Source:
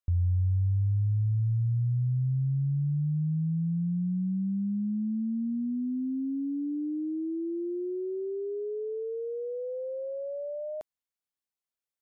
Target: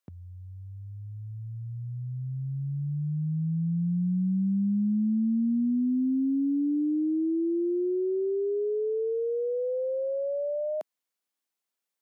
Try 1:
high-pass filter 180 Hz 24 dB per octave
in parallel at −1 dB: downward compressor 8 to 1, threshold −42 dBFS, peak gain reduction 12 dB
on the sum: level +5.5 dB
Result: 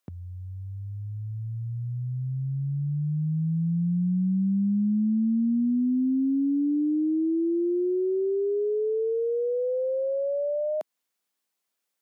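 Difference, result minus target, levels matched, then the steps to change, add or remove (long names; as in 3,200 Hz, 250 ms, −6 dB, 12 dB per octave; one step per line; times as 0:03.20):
downward compressor: peak gain reduction +12 dB
remove: downward compressor 8 to 1, threshold −42 dBFS, peak gain reduction 12 dB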